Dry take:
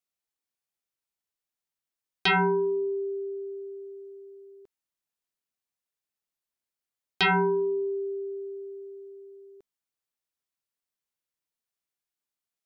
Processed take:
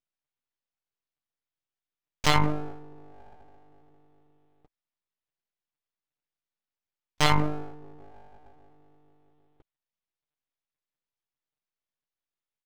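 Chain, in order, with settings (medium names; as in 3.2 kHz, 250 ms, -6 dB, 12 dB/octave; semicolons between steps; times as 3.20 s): comb 6.2 ms, depth 83%; monotone LPC vocoder at 8 kHz 150 Hz; full-wave rectifier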